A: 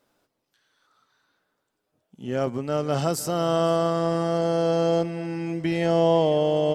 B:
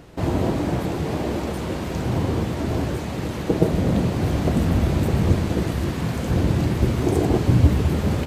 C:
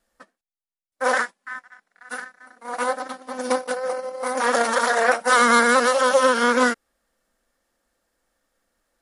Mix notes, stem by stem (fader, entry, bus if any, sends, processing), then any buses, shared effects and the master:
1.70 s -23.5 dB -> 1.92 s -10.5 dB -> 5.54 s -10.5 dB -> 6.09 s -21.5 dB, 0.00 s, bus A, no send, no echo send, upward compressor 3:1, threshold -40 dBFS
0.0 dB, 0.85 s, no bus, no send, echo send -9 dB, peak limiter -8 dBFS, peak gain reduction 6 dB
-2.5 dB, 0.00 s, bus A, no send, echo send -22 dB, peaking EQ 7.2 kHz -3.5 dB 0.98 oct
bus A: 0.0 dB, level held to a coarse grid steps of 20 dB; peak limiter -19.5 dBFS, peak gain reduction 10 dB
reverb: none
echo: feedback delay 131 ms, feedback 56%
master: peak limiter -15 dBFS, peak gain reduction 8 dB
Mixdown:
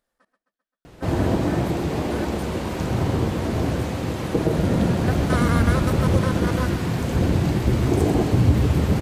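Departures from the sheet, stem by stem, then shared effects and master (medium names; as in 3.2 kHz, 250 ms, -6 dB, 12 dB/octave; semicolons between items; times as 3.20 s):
stem A -23.5 dB -> -30.5 dB; master: missing peak limiter -15 dBFS, peak gain reduction 8 dB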